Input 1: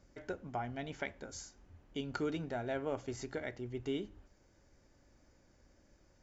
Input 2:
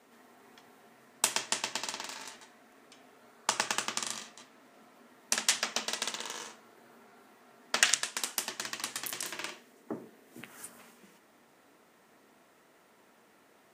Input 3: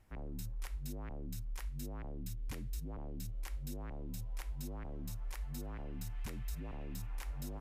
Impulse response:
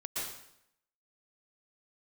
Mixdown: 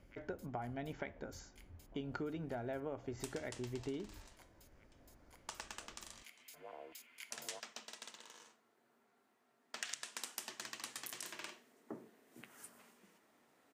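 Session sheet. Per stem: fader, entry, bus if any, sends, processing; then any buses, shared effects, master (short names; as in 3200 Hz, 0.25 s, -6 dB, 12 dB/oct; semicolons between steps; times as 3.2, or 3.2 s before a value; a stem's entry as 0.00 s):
+1.5 dB, 0.00 s, no send, LPF 1900 Hz 6 dB/oct
9.74 s -17.5 dB -> 10.01 s -9 dB, 2.00 s, no send, dry
-4.0 dB, 0.00 s, no send, LFO high-pass square 1.3 Hz 570–2400 Hz; ripple EQ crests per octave 1.8, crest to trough 8 dB; auto duck -12 dB, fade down 0.55 s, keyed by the first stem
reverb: off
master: compressor 5:1, threshold -39 dBFS, peak gain reduction 8.5 dB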